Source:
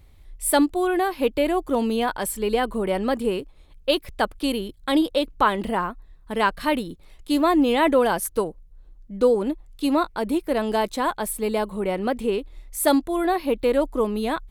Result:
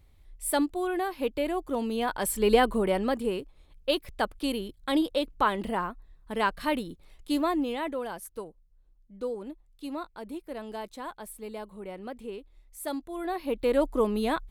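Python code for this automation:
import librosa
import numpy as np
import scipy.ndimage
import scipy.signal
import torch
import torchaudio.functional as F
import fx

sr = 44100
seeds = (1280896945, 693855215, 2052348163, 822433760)

y = fx.gain(x, sr, db=fx.line((1.9, -7.5), (2.53, 2.0), (3.2, -5.5), (7.32, -5.5), (7.94, -15.0), (12.95, -15.0), (13.84, -2.5)))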